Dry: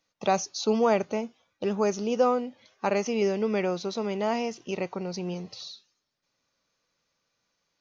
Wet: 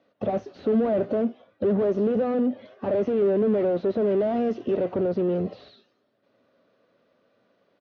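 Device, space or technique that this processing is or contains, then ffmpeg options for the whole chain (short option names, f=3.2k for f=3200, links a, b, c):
overdrive pedal into a guitar cabinet: -filter_complex "[0:a]asplit=2[a][b];[b]highpass=f=720:p=1,volume=35dB,asoftclip=type=tanh:threshold=-11.5dB[c];[a][c]amix=inputs=2:normalize=0,lowpass=f=1.1k:p=1,volume=-6dB,highpass=96,equalizer=f=110:t=q:w=4:g=6,equalizer=f=150:t=q:w=4:g=-8,equalizer=f=320:t=q:w=4:g=-6,equalizer=f=490:t=q:w=4:g=-7,equalizer=f=850:t=q:w=4:g=-8,equalizer=f=2.3k:t=q:w=4:g=-5,lowpass=f=3.5k:w=0.5412,lowpass=f=3.5k:w=1.3066,firequalizer=gain_entry='entry(140,0);entry(240,4);entry(530,4);entry(1000,-11);entry(2200,-12);entry(4600,-9);entry(7100,-2)':delay=0.05:min_phase=1,acrossover=split=3200[d][e];[e]acompressor=threshold=-58dB:ratio=4:attack=1:release=60[f];[d][f]amix=inputs=2:normalize=0,asettb=1/sr,asplit=3[g][h][i];[g]atrim=end=4.074[j];[h]atrim=start=4.07:end=4.75,asetpts=PTS-STARTPTS,afade=t=in:d=0.004:c=qsin,afade=t=out:st=0.676:d=0.004:c=qsin,highshelf=f=4.3k:g=5[k];[i]atrim=start=4.746[l];[j][k]acrossfade=d=0.004:c1=hsin:c2=qsin[m];[m][l]acrossfade=d=0.004:c1=qsin:c2=hsin,volume=-2dB"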